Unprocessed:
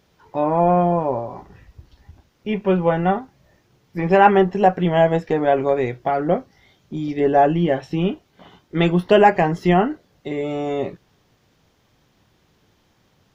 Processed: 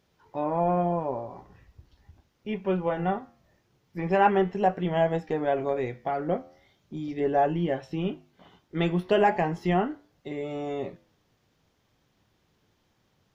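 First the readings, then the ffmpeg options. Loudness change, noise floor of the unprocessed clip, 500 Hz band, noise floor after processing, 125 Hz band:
-8.5 dB, -62 dBFS, -8.5 dB, -71 dBFS, -8.5 dB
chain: -af "flanger=delay=7.7:depth=4.9:regen=-87:speed=0.39:shape=triangular,volume=0.631"

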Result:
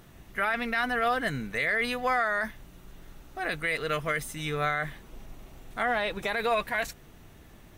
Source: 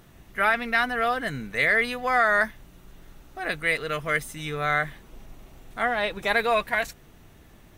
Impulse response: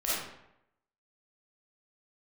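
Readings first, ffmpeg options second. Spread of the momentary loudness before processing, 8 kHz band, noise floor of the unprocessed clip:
11 LU, -1.0 dB, -52 dBFS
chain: -af "alimiter=limit=0.126:level=0:latency=1:release=35"

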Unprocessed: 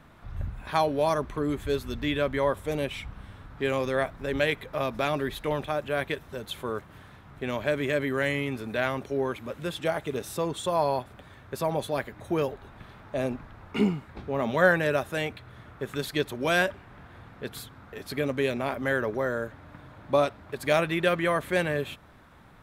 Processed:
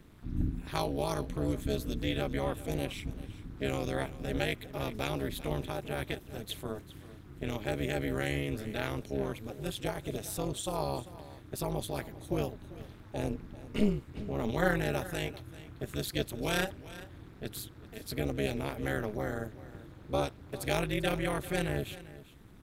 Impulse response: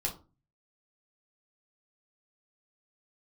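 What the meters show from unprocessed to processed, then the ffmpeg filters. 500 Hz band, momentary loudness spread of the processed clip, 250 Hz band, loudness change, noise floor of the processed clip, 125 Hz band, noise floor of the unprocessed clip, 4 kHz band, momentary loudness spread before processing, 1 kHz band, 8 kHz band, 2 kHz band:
-8.0 dB, 14 LU, -3.5 dB, -6.5 dB, -52 dBFS, -1.0 dB, -52 dBFS, -3.5 dB, 15 LU, -8.0 dB, +0.5 dB, -8.5 dB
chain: -filter_complex "[0:a]equalizer=f=1000:w=0.34:g=-13.5,tremolo=f=210:d=0.974,asplit=2[s0][s1];[s1]aecho=0:1:393:0.15[s2];[s0][s2]amix=inputs=2:normalize=0,volume=2.11"

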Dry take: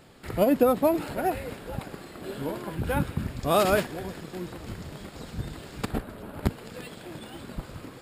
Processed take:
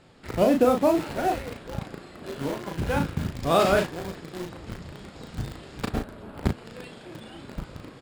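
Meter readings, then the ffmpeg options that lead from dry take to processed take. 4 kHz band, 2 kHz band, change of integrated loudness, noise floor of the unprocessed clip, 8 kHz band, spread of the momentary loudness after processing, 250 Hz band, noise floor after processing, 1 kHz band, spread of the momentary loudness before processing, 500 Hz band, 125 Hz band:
+2.0 dB, +1.5 dB, +1.5 dB, -46 dBFS, -0.5 dB, 21 LU, +1.5 dB, -47 dBFS, +2.0 dB, 19 LU, +1.5 dB, +1.5 dB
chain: -filter_complex "[0:a]lowpass=7100,asplit=2[s0][s1];[s1]acrusher=bits=4:mix=0:aa=0.000001,volume=0.447[s2];[s0][s2]amix=inputs=2:normalize=0,asplit=2[s3][s4];[s4]adelay=36,volume=0.562[s5];[s3][s5]amix=inputs=2:normalize=0,volume=0.75"

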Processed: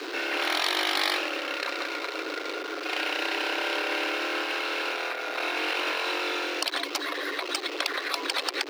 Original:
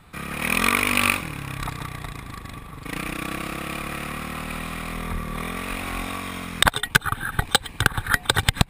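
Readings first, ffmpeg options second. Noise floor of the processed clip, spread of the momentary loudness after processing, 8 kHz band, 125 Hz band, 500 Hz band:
-36 dBFS, 6 LU, -8.5 dB, under -40 dB, +2.5 dB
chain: -af "aeval=exprs='val(0)+0.5*0.0282*sgn(val(0))':c=same,highshelf=f=6600:t=q:w=1.5:g=-12.5,afftfilt=real='re*lt(hypot(re,im),0.2)':imag='im*lt(hypot(re,im),0.2)':win_size=1024:overlap=0.75,afreqshift=270"

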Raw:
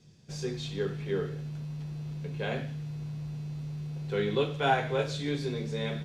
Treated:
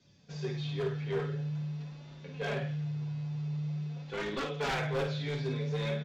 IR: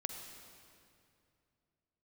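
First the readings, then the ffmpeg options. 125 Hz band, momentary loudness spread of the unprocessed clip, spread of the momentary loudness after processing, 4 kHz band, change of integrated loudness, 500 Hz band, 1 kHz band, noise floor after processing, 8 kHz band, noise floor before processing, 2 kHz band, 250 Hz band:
0.0 dB, 11 LU, 7 LU, -3.0 dB, -2.0 dB, -4.0 dB, -6.5 dB, -51 dBFS, no reading, -44 dBFS, -2.5 dB, -2.5 dB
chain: -filter_complex "[0:a]lowpass=5500,acrossover=split=3900[s0][s1];[s1]acompressor=threshold=0.00178:ratio=4:attack=1:release=60[s2];[s0][s2]amix=inputs=2:normalize=0,highpass=62,equalizer=f=300:t=o:w=0.58:g=-6.5,aecho=1:1:7:0.43,acrossover=split=140[s3][s4];[s3]alimiter=level_in=10:limit=0.0631:level=0:latency=1,volume=0.1[s5];[s5][s4]amix=inputs=2:normalize=0,aeval=exprs='0.211*(cos(1*acos(clip(val(0)/0.211,-1,1)))-cos(1*PI/2))+0.0106*(cos(5*acos(clip(val(0)/0.211,-1,1)))-cos(5*PI/2))':c=same,aresample=16000,aeval=exprs='0.0631*(abs(mod(val(0)/0.0631+3,4)-2)-1)':c=same,aresample=44100,flanger=delay=3.3:depth=5:regen=-8:speed=0.47:shape=sinusoidal,volume=25.1,asoftclip=hard,volume=0.0398,aecho=1:1:23|53:0.266|0.422"

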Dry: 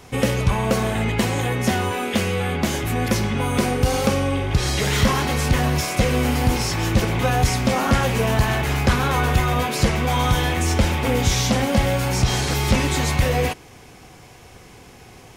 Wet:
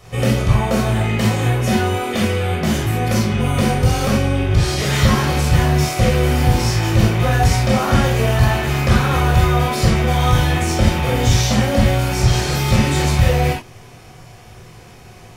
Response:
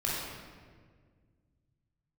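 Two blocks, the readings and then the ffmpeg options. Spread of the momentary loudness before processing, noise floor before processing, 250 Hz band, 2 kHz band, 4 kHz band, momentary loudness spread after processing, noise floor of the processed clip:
3 LU, -45 dBFS, +3.5 dB, +2.0 dB, +2.0 dB, 3 LU, -41 dBFS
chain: -filter_complex "[1:a]atrim=start_sample=2205,atrim=end_sample=3969[s0];[0:a][s0]afir=irnorm=-1:irlink=0,volume=0.75"

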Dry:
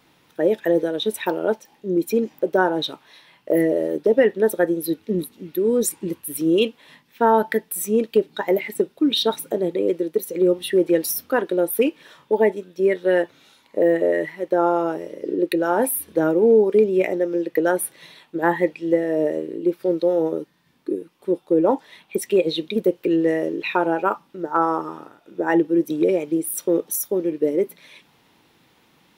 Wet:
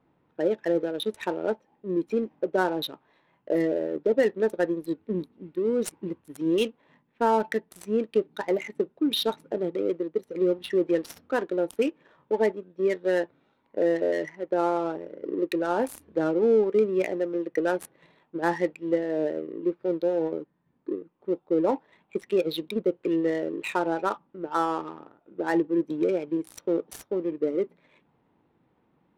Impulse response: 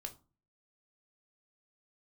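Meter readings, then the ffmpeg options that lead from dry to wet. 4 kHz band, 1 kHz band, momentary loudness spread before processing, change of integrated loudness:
-6.5 dB, -6.0 dB, 9 LU, -6.0 dB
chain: -af "adynamicsmooth=sensitivity=4:basefreq=1100,volume=0.501"

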